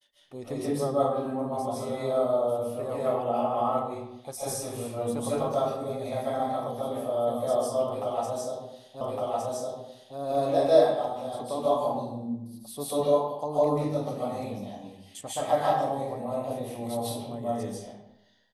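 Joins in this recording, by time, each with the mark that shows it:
0:09.01: the same again, the last 1.16 s

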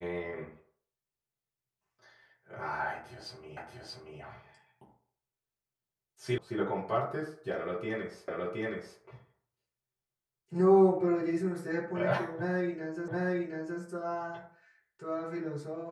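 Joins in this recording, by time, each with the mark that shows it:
0:03.57: the same again, the last 0.63 s
0:06.38: cut off before it has died away
0:08.28: the same again, the last 0.72 s
0:13.08: the same again, the last 0.72 s

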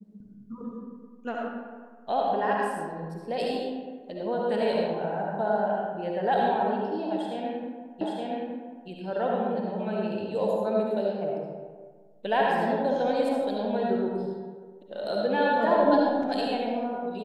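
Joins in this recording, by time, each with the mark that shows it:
0:08.01: the same again, the last 0.87 s

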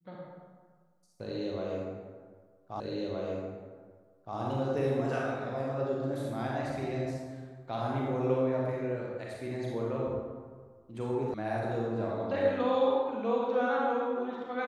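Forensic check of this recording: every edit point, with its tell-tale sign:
0:02.80: the same again, the last 1.57 s
0:11.34: cut off before it has died away

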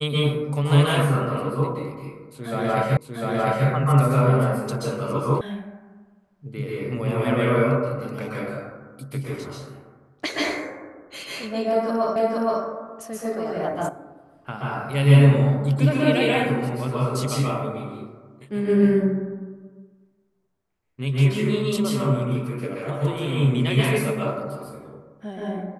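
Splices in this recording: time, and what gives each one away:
0:02.97: the same again, the last 0.7 s
0:05.41: cut off before it has died away
0:12.16: the same again, the last 0.47 s
0:13.89: cut off before it has died away

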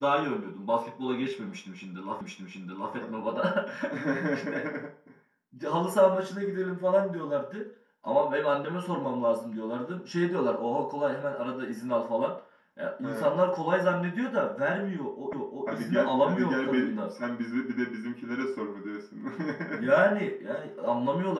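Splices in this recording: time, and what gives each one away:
0:02.21: the same again, the last 0.73 s
0:15.33: the same again, the last 0.35 s

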